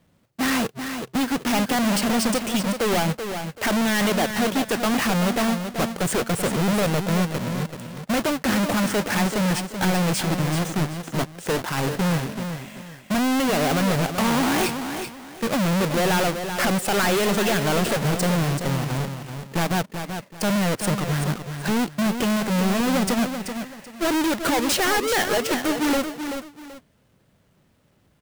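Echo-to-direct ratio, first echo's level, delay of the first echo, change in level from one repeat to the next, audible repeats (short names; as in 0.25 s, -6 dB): -7.5 dB, -8.0 dB, 0.383 s, -11.0 dB, 2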